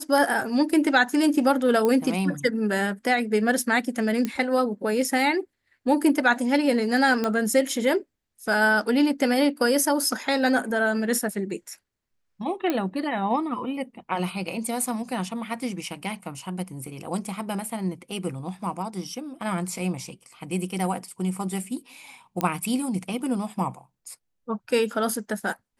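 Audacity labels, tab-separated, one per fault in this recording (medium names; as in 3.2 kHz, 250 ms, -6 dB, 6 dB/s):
1.850000	1.850000	pop -12 dBFS
4.250000	4.250000	pop -13 dBFS
7.240000	7.240000	pop -12 dBFS
12.700000	12.700000	pop -11 dBFS
22.410000	22.410000	pop -10 dBFS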